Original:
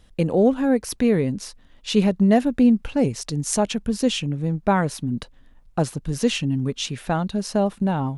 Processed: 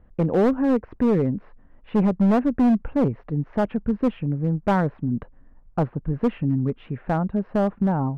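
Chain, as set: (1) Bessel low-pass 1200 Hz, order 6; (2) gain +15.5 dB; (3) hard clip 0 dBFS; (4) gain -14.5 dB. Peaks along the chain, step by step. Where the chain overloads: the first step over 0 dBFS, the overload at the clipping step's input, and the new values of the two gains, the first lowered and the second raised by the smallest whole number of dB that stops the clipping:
-6.0, +9.5, 0.0, -14.5 dBFS; step 2, 9.5 dB; step 2 +5.5 dB, step 4 -4.5 dB

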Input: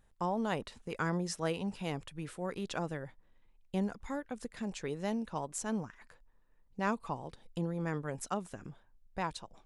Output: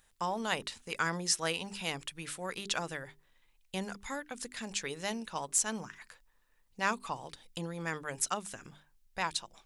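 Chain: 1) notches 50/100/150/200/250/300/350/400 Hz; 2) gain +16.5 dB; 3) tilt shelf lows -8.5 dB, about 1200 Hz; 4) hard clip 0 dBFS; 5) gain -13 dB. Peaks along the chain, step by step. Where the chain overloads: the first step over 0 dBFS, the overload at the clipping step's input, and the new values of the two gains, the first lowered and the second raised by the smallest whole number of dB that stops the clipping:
-19.5, -3.0, +3.5, 0.0, -13.0 dBFS; step 3, 3.5 dB; step 2 +12.5 dB, step 5 -9 dB

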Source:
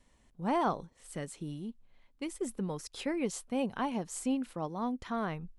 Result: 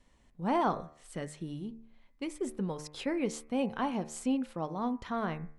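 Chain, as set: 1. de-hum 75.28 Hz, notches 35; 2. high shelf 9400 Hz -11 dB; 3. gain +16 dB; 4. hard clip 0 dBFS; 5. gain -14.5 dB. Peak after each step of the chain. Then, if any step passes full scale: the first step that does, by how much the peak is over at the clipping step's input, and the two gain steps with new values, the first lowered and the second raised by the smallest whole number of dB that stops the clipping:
-20.0, -20.0, -4.0, -4.0, -18.5 dBFS; no overload

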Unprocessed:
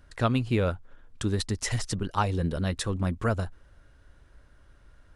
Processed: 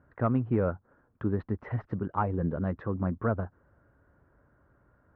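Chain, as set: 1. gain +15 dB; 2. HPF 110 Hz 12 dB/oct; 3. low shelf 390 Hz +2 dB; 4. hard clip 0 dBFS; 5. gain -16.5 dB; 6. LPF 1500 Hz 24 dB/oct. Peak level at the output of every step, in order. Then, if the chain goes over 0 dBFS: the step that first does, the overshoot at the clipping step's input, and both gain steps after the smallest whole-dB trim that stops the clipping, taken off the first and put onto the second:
+3.0, +6.0, +6.5, 0.0, -16.5, -15.0 dBFS; step 1, 6.5 dB; step 1 +8 dB, step 5 -9.5 dB

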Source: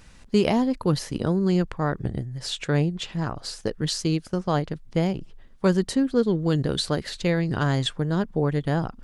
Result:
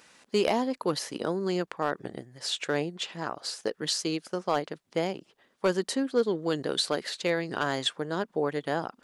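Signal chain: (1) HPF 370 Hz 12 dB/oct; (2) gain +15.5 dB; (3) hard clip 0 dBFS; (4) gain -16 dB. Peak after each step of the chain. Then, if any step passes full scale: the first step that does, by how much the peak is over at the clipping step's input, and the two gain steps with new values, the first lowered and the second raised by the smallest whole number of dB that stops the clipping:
-9.0, +6.5, 0.0, -16.0 dBFS; step 2, 6.5 dB; step 2 +8.5 dB, step 4 -9 dB

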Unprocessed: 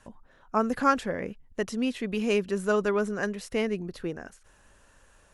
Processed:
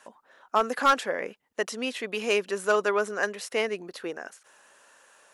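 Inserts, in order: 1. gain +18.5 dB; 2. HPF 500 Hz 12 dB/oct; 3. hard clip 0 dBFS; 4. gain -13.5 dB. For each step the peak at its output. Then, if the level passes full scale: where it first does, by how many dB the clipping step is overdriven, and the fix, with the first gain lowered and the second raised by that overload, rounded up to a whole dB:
+9.0, +9.5, 0.0, -13.5 dBFS; step 1, 9.5 dB; step 1 +8.5 dB, step 4 -3.5 dB

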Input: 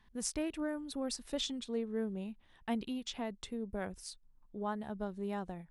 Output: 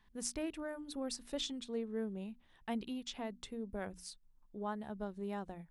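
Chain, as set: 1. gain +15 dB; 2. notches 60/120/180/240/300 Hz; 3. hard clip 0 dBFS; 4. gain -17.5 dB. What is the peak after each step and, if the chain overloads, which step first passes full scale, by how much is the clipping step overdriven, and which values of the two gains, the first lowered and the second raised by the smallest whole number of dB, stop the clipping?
-4.0, -3.5, -3.5, -21.0 dBFS; no overload

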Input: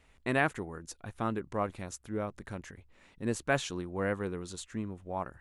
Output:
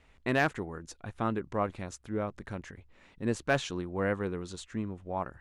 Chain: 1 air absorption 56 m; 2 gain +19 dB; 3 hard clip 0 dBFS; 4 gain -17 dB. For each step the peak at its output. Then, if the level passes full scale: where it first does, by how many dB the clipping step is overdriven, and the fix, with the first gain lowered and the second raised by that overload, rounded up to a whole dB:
-14.5, +4.5, 0.0, -17.0 dBFS; step 2, 4.5 dB; step 2 +14 dB, step 4 -12 dB

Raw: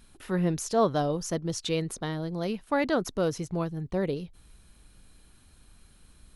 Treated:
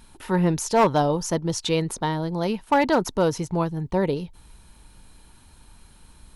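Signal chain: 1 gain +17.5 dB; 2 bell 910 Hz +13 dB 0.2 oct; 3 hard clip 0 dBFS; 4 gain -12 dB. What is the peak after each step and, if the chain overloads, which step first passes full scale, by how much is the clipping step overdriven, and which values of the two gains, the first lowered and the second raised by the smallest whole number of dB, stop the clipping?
+4.0, +6.5, 0.0, -12.0 dBFS; step 1, 6.5 dB; step 1 +10.5 dB, step 4 -5 dB

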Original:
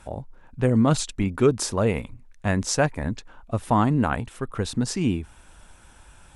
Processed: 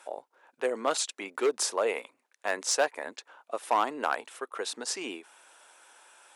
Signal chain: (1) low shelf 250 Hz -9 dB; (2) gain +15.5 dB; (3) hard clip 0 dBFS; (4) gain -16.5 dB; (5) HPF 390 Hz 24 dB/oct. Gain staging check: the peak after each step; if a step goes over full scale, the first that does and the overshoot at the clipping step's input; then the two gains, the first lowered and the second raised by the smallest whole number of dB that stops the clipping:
-9.0, +6.5, 0.0, -16.5, -12.0 dBFS; step 2, 6.5 dB; step 2 +8.5 dB, step 4 -9.5 dB

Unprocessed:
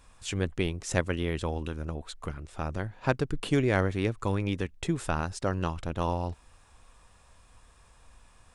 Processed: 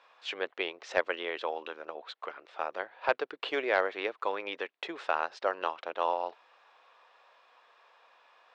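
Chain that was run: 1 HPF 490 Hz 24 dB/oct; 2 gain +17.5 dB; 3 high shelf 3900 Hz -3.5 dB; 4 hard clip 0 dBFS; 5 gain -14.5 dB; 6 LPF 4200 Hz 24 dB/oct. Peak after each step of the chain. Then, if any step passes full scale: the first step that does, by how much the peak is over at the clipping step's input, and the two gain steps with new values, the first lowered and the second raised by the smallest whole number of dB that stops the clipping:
-11.0, +6.5, +6.0, 0.0, -14.5, -13.5 dBFS; step 2, 6.0 dB; step 2 +11.5 dB, step 5 -8.5 dB

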